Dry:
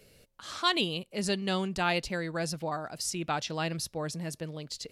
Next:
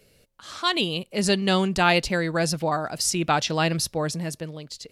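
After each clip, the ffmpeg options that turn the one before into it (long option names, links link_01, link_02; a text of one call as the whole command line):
ffmpeg -i in.wav -af "dynaudnorm=framelen=200:gausssize=9:maxgain=9.5dB" out.wav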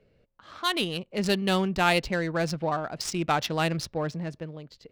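ffmpeg -i in.wav -af "adynamicsmooth=sensitivity=2.5:basefreq=2000,volume=-3dB" out.wav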